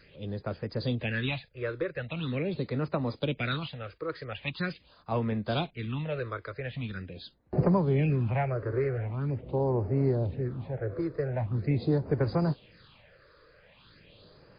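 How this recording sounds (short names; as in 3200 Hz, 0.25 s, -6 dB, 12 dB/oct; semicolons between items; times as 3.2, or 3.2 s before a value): phasing stages 6, 0.43 Hz, lowest notch 200–3300 Hz; MP3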